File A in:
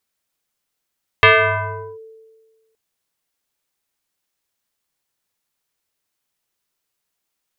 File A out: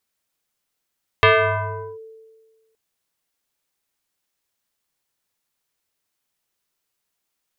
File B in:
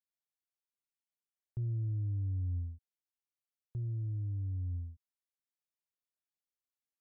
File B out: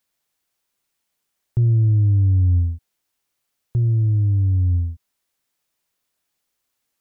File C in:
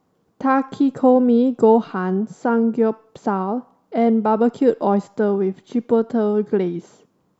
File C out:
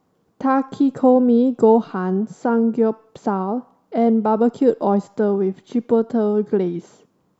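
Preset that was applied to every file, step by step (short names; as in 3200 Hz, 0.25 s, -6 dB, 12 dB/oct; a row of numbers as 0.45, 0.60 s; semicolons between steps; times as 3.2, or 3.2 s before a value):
dynamic EQ 2200 Hz, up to -6 dB, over -36 dBFS, Q 0.98; match loudness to -19 LUFS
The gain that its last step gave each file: -0.5, +18.5, +0.5 dB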